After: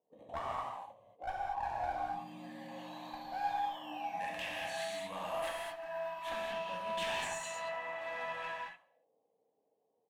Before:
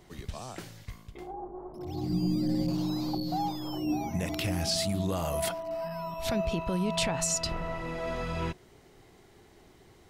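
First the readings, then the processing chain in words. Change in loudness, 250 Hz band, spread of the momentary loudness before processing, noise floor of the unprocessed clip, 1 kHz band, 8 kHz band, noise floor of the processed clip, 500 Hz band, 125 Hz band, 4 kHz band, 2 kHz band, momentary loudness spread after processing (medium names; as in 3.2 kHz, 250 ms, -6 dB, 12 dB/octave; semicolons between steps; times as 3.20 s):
-8.0 dB, -21.0 dB, 14 LU, -58 dBFS, 0.0 dB, -15.0 dB, -80 dBFS, -6.5 dB, -24.0 dB, -9.0 dB, 0.0 dB, 11 LU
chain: high-pass 220 Hz 12 dB/octave; peaking EQ 2 kHz -15 dB 0.66 oct; static phaser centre 1.4 kHz, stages 6; gate -53 dBFS, range -21 dB; auto-wah 450–1700 Hz, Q 7, up, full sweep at -39 dBFS; one-sided clip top -56.5 dBFS; feedback delay 70 ms, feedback 57%, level -24 dB; gated-style reverb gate 260 ms flat, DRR -4 dB; trim +16.5 dB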